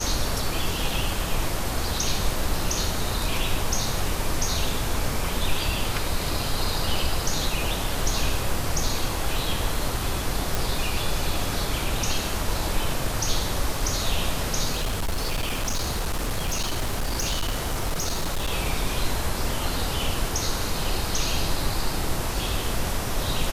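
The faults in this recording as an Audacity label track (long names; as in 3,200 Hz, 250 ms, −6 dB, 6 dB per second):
10.550000	10.550000	click
14.720000	18.520000	clipping −21.5 dBFS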